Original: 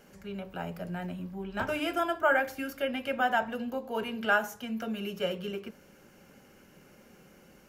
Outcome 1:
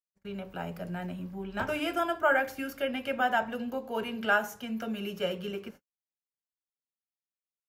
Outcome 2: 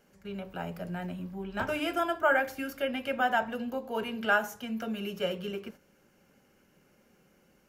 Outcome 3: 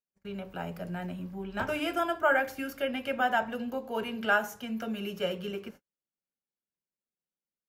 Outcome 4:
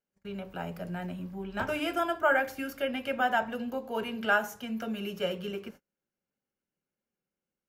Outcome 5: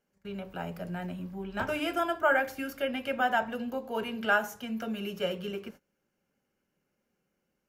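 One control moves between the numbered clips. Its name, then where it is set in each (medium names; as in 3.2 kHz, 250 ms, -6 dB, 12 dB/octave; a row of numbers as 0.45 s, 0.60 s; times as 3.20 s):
gate, range: -60 dB, -8 dB, -47 dB, -35 dB, -23 dB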